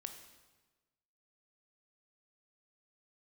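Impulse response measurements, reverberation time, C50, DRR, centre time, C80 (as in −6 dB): 1.3 s, 8.0 dB, 6.0 dB, 21 ms, 10.0 dB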